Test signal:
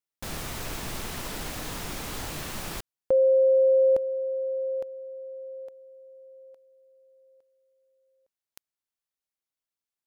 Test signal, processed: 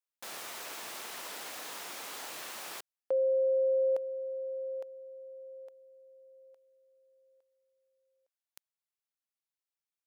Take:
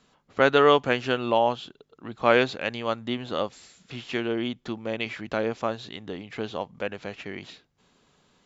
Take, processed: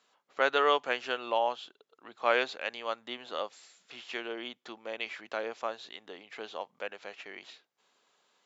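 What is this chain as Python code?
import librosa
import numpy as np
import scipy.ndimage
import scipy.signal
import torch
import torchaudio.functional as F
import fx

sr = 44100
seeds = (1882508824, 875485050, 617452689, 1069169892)

y = scipy.signal.sosfilt(scipy.signal.butter(2, 530.0, 'highpass', fs=sr, output='sos'), x)
y = F.gain(torch.from_numpy(y), -5.0).numpy()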